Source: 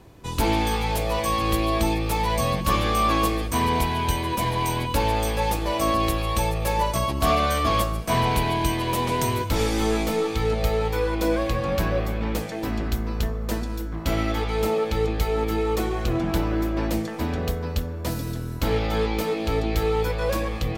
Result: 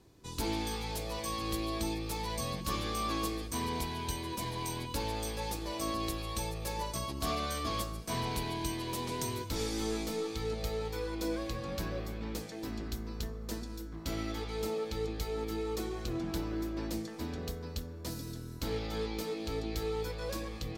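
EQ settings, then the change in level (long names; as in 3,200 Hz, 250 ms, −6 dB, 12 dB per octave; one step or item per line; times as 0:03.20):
low-shelf EQ 430 Hz −11 dB
flat-topped bell 1,300 Hz −9.5 dB 2.9 octaves
high-shelf EQ 7,600 Hz −8.5 dB
−3.0 dB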